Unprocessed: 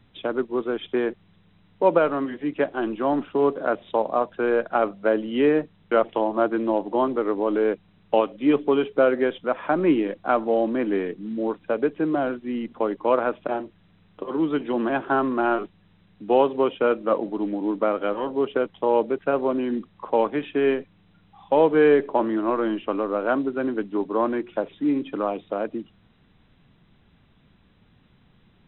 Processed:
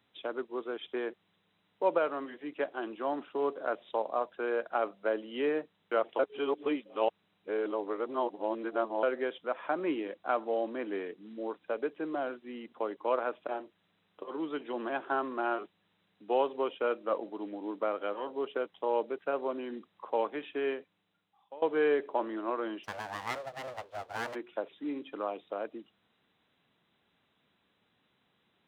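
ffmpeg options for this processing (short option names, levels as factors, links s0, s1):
-filter_complex "[0:a]asplit=3[s0][s1][s2];[s0]afade=t=out:st=22.83:d=0.02[s3];[s1]aeval=exprs='abs(val(0))':c=same,afade=t=in:st=22.83:d=0.02,afade=t=out:st=24.34:d=0.02[s4];[s2]afade=t=in:st=24.34:d=0.02[s5];[s3][s4][s5]amix=inputs=3:normalize=0,asplit=4[s6][s7][s8][s9];[s6]atrim=end=6.192[s10];[s7]atrim=start=6.188:end=9.032,asetpts=PTS-STARTPTS,areverse[s11];[s8]atrim=start=9.028:end=21.62,asetpts=PTS-STARTPTS,afade=t=out:st=11.572:d=1.02:silence=0.0707946[s12];[s9]atrim=start=21.62,asetpts=PTS-STARTPTS,afade=t=in:d=0.004:c=hsin:silence=0.0707946[s13];[s10][s11]acrossfade=d=0.004:c1=hsin:c2=hsin[s14];[s12][s13]concat=n=2:v=0:a=1[s15];[s14][s15]acrossfade=d=0.004:c1=hsin:c2=hsin,highpass=78,bass=f=250:g=-15,treble=f=4000:g=5,volume=0.376"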